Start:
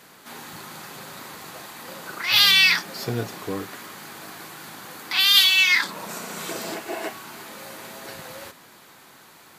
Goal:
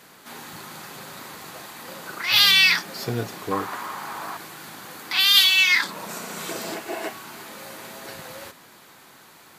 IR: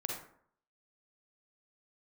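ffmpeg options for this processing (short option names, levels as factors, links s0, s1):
-filter_complex "[0:a]asettb=1/sr,asplit=3[s0][s1][s2];[s0]atrim=end=3.514[s3];[s1]atrim=start=3.51:end=4.37,asetpts=PTS-STARTPTS,afade=t=in:d=0.004:c=qsin,afade=t=out:st=0.856:d=0.004:c=qsin,equalizer=f=1000:w=1.2:g=13[s4];[s2]atrim=start=4.366[s5];[s3][s4]acrossfade=d=0.004:c1=hsin:c2=qsin[s6];[s6][s5]acrossfade=d=0.004:c1=qsin:c2=hsin"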